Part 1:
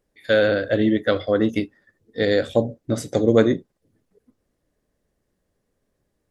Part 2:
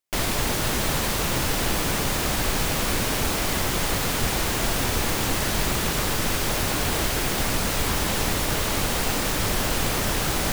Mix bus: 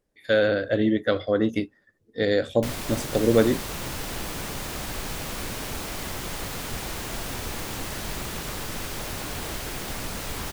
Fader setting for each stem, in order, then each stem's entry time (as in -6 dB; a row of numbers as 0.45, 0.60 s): -3.0, -8.5 dB; 0.00, 2.50 s